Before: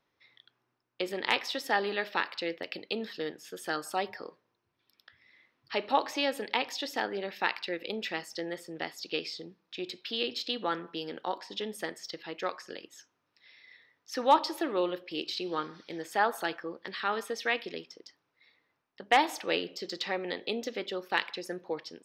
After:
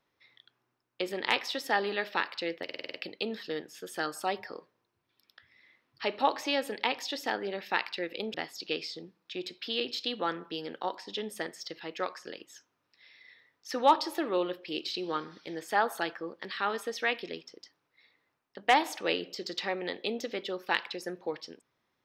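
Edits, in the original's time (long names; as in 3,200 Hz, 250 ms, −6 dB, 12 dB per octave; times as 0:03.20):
0:02.64: stutter 0.05 s, 7 plays
0:08.04–0:08.77: remove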